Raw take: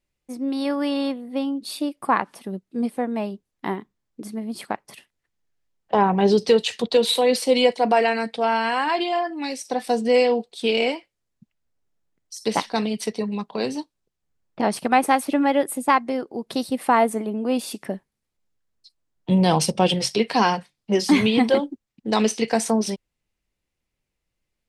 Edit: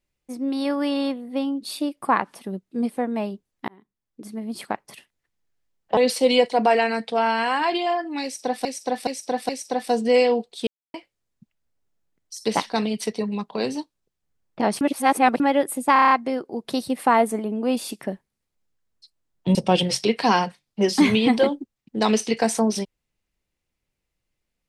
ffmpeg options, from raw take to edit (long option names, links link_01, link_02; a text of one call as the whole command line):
ffmpeg -i in.wav -filter_complex "[0:a]asplit=17[link_01][link_02][link_03][link_04][link_05][link_06][link_07][link_08][link_09][link_10][link_11][link_12][link_13][link_14][link_15][link_16][link_17];[link_01]atrim=end=3.68,asetpts=PTS-STARTPTS,afade=type=out:start_time=3.676:duration=0.004:curve=hsin[link_18];[link_02]atrim=start=3.68:end=5.972,asetpts=PTS-STARTPTS,afade=type=in:duration=0.87[link_19];[link_03]atrim=start=7.228:end=9.912[link_20];[link_04]atrim=start=9.488:end=9.912[link_21];[link_05]atrim=start=9.488:end=9.912[link_22];[link_06]atrim=start=9.488:end=10.67,asetpts=PTS-STARTPTS,afade=type=out:start_time=1.178:duration=0.004:curve=hsin[link_23];[link_07]atrim=start=10.67:end=10.94,asetpts=PTS-STARTPTS,volume=0[link_24];[link_08]atrim=start=10.94:end=14.812,asetpts=PTS-STARTPTS,afade=type=in:duration=0.004:curve=hsin[link_25];[link_09]atrim=start=14.808:end=15.402,asetpts=PTS-STARTPTS,areverse[link_26];[link_10]atrim=start=15.398:end=15.962[link_27];[link_11]atrim=start=15.928:end=15.962[link_28];[link_12]atrim=start=15.928:end=15.962[link_29];[link_13]atrim=start=15.928:end=15.962[link_30];[link_14]atrim=start=15.928:end=15.962[link_31];[link_15]atrim=start=15.928:end=15.962[link_32];[link_16]atrim=start=15.928:end=19.372[link_33];[link_17]atrim=start=19.658[link_34];[link_18][link_19]concat=n=2:v=0:a=1[link_35];[link_35][link_20]acrossfade=duration=0.004:curve1=hsin:curve2=hsin[link_36];[link_36][link_21]acrossfade=duration=0.004:curve1=hsin:curve2=hsin[link_37];[link_37][link_22]acrossfade=duration=0.004:curve1=hsin:curve2=hsin[link_38];[link_23][link_24][link_25]concat=n=3:v=0:a=1[link_39];[link_38][link_39]acrossfade=duration=0.004:curve1=hsin:curve2=hsin[link_40];[link_40][link_26]acrossfade=duration=0.004:curve1=hsin:curve2=hsin[link_41];[link_41][link_27]acrossfade=duration=0.004:curve1=hsin:curve2=hsin[link_42];[link_42][link_28]acrossfade=duration=0.004:curve1=hsin:curve2=hsin[link_43];[link_43][link_29]acrossfade=duration=0.004:curve1=hsin:curve2=hsin[link_44];[link_44][link_30]acrossfade=duration=0.004:curve1=hsin:curve2=hsin[link_45];[link_45][link_31]acrossfade=duration=0.004:curve1=hsin:curve2=hsin[link_46];[link_46][link_32]acrossfade=duration=0.004:curve1=hsin:curve2=hsin[link_47];[link_47][link_33]acrossfade=duration=0.004:curve1=hsin:curve2=hsin[link_48];[link_48][link_34]acrossfade=duration=0.004:curve1=hsin:curve2=hsin" out.wav